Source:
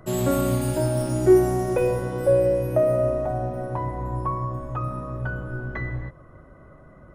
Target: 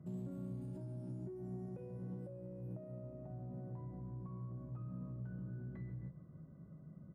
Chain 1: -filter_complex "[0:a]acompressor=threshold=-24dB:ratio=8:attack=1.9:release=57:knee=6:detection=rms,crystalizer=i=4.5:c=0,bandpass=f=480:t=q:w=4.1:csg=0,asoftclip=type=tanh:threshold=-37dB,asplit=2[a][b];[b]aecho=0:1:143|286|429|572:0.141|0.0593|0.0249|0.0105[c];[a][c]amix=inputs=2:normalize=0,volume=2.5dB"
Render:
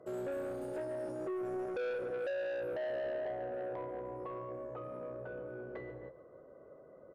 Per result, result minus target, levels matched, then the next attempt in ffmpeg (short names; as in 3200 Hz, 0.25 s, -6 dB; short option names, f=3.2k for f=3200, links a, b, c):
125 Hz band -18.0 dB; compressor: peak gain reduction -6.5 dB
-filter_complex "[0:a]acompressor=threshold=-24dB:ratio=8:attack=1.9:release=57:knee=6:detection=rms,crystalizer=i=4.5:c=0,bandpass=f=170:t=q:w=4.1:csg=0,asoftclip=type=tanh:threshold=-37dB,asplit=2[a][b];[b]aecho=0:1:143|286|429|572:0.141|0.0593|0.0249|0.0105[c];[a][c]amix=inputs=2:normalize=0,volume=2.5dB"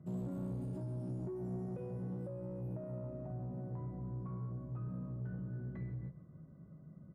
compressor: peak gain reduction -6.5 dB
-filter_complex "[0:a]acompressor=threshold=-31.5dB:ratio=8:attack=1.9:release=57:knee=6:detection=rms,crystalizer=i=4.5:c=0,bandpass=f=170:t=q:w=4.1:csg=0,asoftclip=type=tanh:threshold=-37dB,asplit=2[a][b];[b]aecho=0:1:143|286|429|572:0.141|0.0593|0.0249|0.0105[c];[a][c]amix=inputs=2:normalize=0,volume=2.5dB"